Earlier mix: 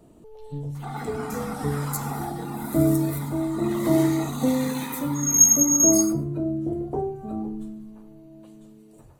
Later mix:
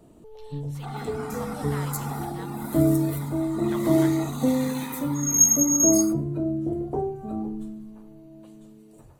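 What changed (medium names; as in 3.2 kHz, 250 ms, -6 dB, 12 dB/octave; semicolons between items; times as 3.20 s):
speech +7.0 dB; second sound: send -9.0 dB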